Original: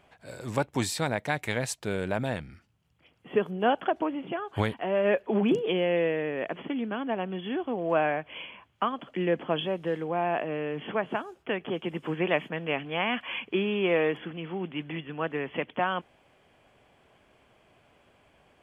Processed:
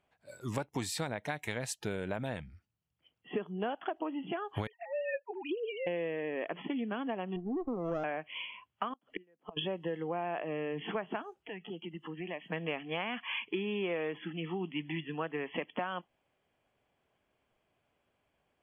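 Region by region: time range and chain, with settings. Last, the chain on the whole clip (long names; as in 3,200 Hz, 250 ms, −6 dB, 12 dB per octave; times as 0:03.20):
0:04.67–0:05.87: three sine waves on the formant tracks + high-pass filter 1,300 Hz 6 dB per octave
0:07.36–0:08.04: inverse Chebyshev low-pass filter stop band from 2,800 Hz, stop band 60 dB + windowed peak hold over 17 samples
0:08.90–0:09.57: parametric band 500 Hz +4 dB 2.8 octaves + gate with flip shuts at −21 dBFS, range −30 dB
0:11.35–0:12.50: parametric band 180 Hz +3 dB 1.6 octaves + downward compressor 2.5 to 1, threshold −42 dBFS
whole clip: noise reduction from a noise print of the clip's start 16 dB; downward compressor 6 to 1, threshold −32 dBFS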